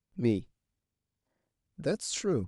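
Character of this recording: noise floor -89 dBFS; spectral tilt -5.0 dB/octave

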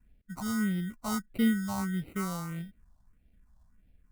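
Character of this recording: aliases and images of a low sample rate 1.7 kHz, jitter 0%; phasing stages 4, 1.6 Hz, lowest notch 390–1100 Hz

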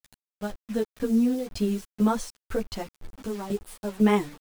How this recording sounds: tremolo saw down 2 Hz, depth 85%; a quantiser's noise floor 8-bit, dither none; a shimmering, thickened sound

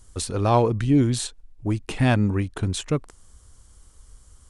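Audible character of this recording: noise floor -53 dBFS; spectral tilt -6.0 dB/octave

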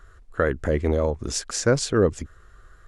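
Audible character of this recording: noise floor -51 dBFS; spectral tilt -5.0 dB/octave

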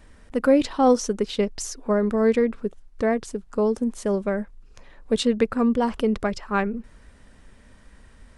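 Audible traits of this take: noise floor -51 dBFS; spectral tilt -5.0 dB/octave

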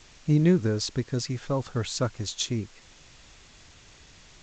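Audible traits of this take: a quantiser's noise floor 8-bit, dither triangular; G.722

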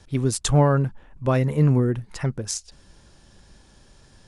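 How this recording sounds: noise floor -54 dBFS; spectral tilt -6.0 dB/octave

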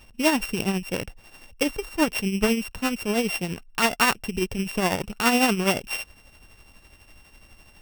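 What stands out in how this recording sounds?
a buzz of ramps at a fixed pitch in blocks of 16 samples; tremolo triangle 12 Hz, depth 60%

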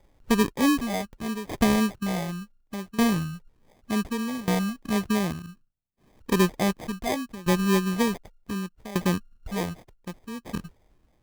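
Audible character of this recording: phasing stages 8, 0.81 Hz, lowest notch 430–2000 Hz; tremolo saw down 0.67 Hz, depth 90%; aliases and images of a low sample rate 1.4 kHz, jitter 0%

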